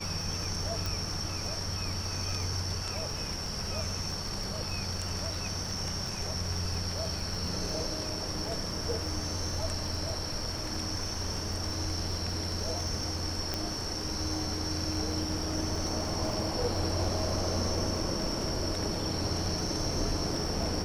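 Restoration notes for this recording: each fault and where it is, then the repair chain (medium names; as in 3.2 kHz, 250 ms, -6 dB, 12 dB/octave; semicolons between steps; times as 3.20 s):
crackle 26 per s -37 dBFS
0.86 s: pop
13.54 s: pop -16 dBFS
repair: de-click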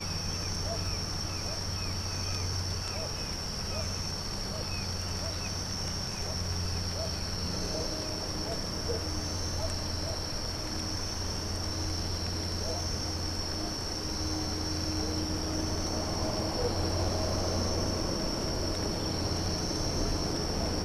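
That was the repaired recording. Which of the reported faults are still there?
0.86 s: pop
13.54 s: pop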